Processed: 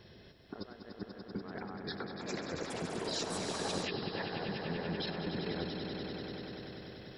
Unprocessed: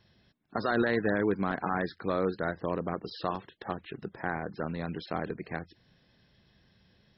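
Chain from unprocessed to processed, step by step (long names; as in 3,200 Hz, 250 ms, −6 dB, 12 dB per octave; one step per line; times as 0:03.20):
parametric band 420 Hz +9.5 dB 0.75 octaves
compressor whose output falls as the input rises −37 dBFS, ratio −0.5
brickwall limiter −27 dBFS, peak gain reduction 13.5 dB
echo that builds up and dies away 97 ms, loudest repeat 5, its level −8 dB
0:01.76–0:04.13: delay with pitch and tempo change per echo 442 ms, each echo +6 semitones, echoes 2
level −2.5 dB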